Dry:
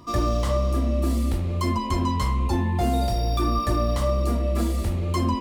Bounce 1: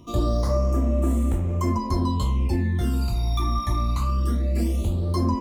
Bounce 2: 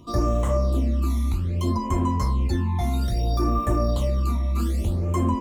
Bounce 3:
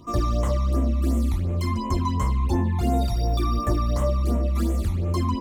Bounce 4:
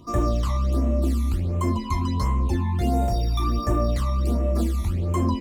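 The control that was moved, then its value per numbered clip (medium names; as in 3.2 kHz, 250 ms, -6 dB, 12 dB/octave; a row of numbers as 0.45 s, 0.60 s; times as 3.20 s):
phase shifter, rate: 0.21 Hz, 0.62 Hz, 2.8 Hz, 1.4 Hz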